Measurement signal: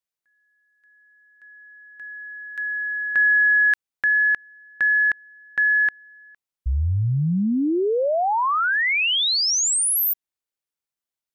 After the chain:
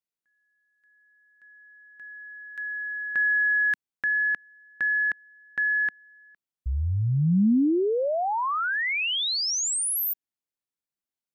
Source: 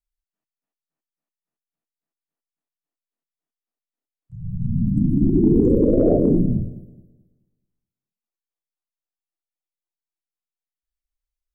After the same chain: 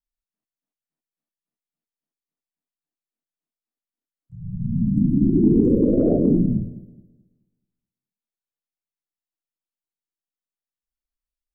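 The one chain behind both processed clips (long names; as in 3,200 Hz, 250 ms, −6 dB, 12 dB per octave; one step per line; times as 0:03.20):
parametric band 220 Hz +7.5 dB 1.5 octaves
level −6 dB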